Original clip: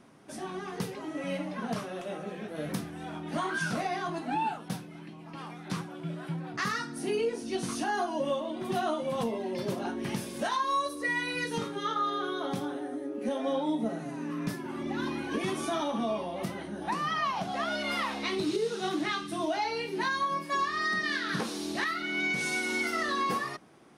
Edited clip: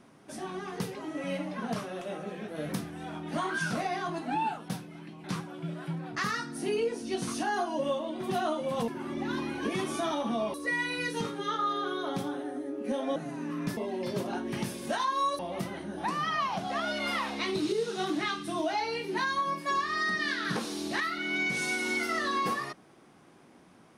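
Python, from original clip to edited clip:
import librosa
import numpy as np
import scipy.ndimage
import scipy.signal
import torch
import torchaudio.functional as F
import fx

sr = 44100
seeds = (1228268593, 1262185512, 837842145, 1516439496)

y = fx.edit(x, sr, fx.cut(start_s=5.24, length_s=0.41),
    fx.swap(start_s=9.29, length_s=1.62, other_s=14.57, other_length_s=1.66),
    fx.cut(start_s=13.53, length_s=0.43), tone=tone)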